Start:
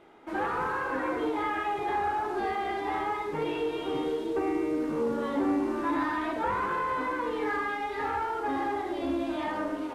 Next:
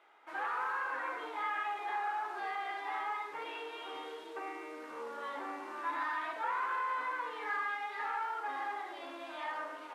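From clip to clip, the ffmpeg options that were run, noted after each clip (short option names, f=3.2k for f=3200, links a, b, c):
-af "highpass=1.1k,highshelf=f=2.7k:g=-8.5"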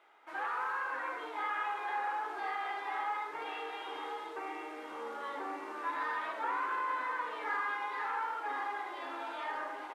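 -filter_complex "[0:a]asplit=2[a][b];[b]adelay=1037,lowpass=f=2k:p=1,volume=-6.5dB,asplit=2[c][d];[d]adelay=1037,lowpass=f=2k:p=1,volume=0.55,asplit=2[e][f];[f]adelay=1037,lowpass=f=2k:p=1,volume=0.55,asplit=2[g][h];[h]adelay=1037,lowpass=f=2k:p=1,volume=0.55,asplit=2[i][j];[j]adelay=1037,lowpass=f=2k:p=1,volume=0.55,asplit=2[k][l];[l]adelay=1037,lowpass=f=2k:p=1,volume=0.55,asplit=2[m][n];[n]adelay=1037,lowpass=f=2k:p=1,volume=0.55[o];[a][c][e][g][i][k][m][o]amix=inputs=8:normalize=0"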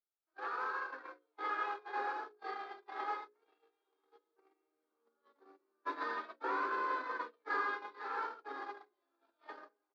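-af "agate=range=-43dB:threshold=-35dB:ratio=16:detection=peak,highpass=f=210:w=0.5412,highpass=f=210:w=1.3066,equalizer=f=230:t=q:w=4:g=7,equalizer=f=390:t=q:w=4:g=8,equalizer=f=900:t=q:w=4:g=-8,equalizer=f=2k:t=q:w=4:g=-8,equalizer=f=2.9k:t=q:w=4:g=-7,equalizer=f=4.5k:t=q:w=4:g=7,lowpass=f=5.7k:w=0.5412,lowpass=f=5.7k:w=1.3066,bandreject=f=60:t=h:w=6,bandreject=f=120:t=h:w=6,bandreject=f=180:t=h:w=6,bandreject=f=240:t=h:w=6,bandreject=f=300:t=h:w=6,bandreject=f=360:t=h:w=6,bandreject=f=420:t=h:w=6,bandreject=f=480:t=h:w=6,bandreject=f=540:t=h:w=6,volume=2.5dB"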